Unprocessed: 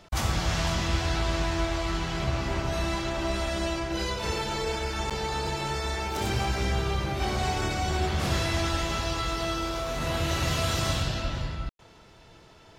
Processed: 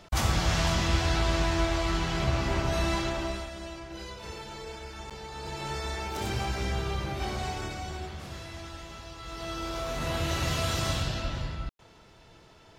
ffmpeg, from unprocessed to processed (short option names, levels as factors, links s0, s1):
-af "volume=11.2,afade=t=out:st=3:d=0.5:silence=0.251189,afade=t=in:st=5.33:d=0.4:silence=0.421697,afade=t=out:st=7.12:d=1.15:silence=0.281838,afade=t=in:st=9.19:d=0.65:silence=0.237137"